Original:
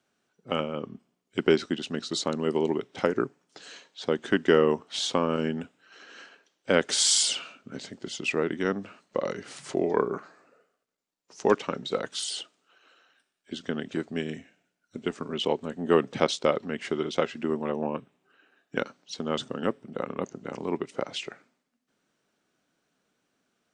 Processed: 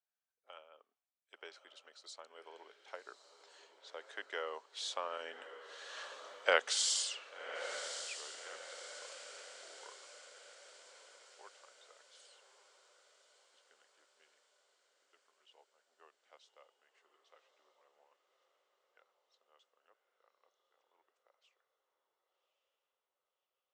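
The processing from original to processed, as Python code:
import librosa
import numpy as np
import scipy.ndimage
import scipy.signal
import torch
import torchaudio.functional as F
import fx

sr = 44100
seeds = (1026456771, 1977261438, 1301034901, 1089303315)

y = fx.doppler_pass(x, sr, speed_mps=12, closest_m=3.6, pass_at_s=6.36)
y = scipy.signal.sosfilt(scipy.signal.butter(4, 600.0, 'highpass', fs=sr, output='sos'), y)
y = fx.rider(y, sr, range_db=4, speed_s=0.5)
y = fx.echo_diffused(y, sr, ms=1141, feedback_pct=51, wet_db=-10.0)
y = y * 10.0 ** (-1.0 / 20.0)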